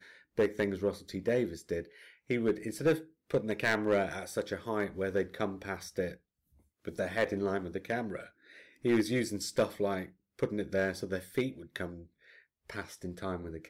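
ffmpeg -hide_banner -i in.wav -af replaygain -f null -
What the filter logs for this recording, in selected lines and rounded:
track_gain = +12.8 dB
track_peak = 0.066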